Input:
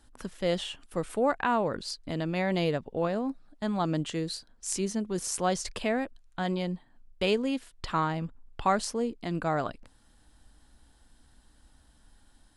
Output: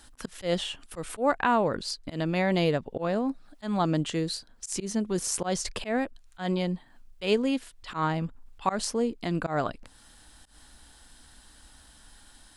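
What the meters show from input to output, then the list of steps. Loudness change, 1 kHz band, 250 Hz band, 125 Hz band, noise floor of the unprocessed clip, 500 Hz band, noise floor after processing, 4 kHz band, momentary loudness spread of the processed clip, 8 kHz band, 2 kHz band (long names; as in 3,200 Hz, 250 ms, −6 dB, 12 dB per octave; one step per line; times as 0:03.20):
+1.5 dB, +0.5 dB, +2.0 dB, +2.0 dB, −62 dBFS, +1.0 dB, −56 dBFS, +2.0 dB, 10 LU, +2.0 dB, +1.5 dB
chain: volume swells 115 ms
one half of a high-frequency compander encoder only
level +3 dB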